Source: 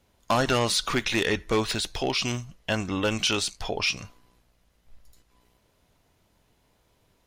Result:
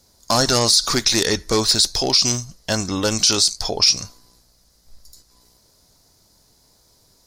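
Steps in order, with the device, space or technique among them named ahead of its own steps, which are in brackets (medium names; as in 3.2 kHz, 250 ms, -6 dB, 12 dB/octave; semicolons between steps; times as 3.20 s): over-bright horn tweeter (resonant high shelf 3.7 kHz +9 dB, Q 3; peak limiter -9.5 dBFS, peak gain reduction 9 dB); trim +5 dB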